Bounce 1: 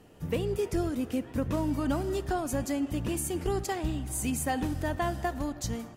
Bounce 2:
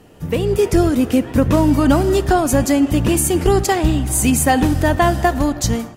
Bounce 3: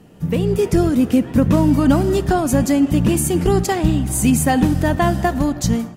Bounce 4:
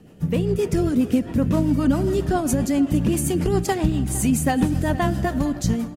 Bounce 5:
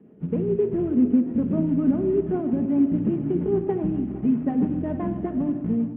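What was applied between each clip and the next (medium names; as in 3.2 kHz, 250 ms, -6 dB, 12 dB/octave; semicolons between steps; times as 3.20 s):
level rider gain up to 6.5 dB; trim +9 dB
peaking EQ 180 Hz +10 dB 0.87 oct; trim -3.5 dB
compression 2:1, threshold -17 dBFS, peak gain reduction 5 dB; rotary cabinet horn 7.5 Hz; delay 458 ms -18 dB
CVSD coder 16 kbps; band-pass filter 310 Hz, Q 1.4; simulated room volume 3800 m³, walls furnished, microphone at 1.4 m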